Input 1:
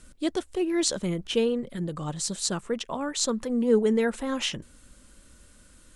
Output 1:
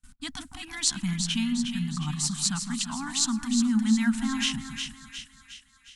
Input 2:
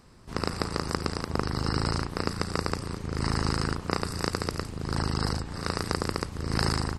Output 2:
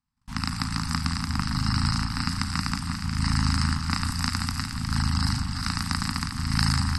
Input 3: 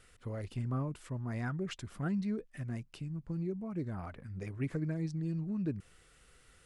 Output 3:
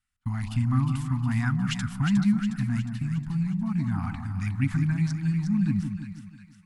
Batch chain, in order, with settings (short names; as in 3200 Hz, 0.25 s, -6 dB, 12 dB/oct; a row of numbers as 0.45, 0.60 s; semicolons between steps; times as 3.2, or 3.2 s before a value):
gate -49 dBFS, range -33 dB; elliptic band-stop 260–800 Hz, stop band 40 dB; dynamic EQ 790 Hz, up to -7 dB, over -51 dBFS, Q 1.4; split-band echo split 1300 Hz, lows 0.162 s, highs 0.36 s, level -6.5 dB; match loudness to -27 LUFS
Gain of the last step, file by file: +2.5, +4.0, +12.0 dB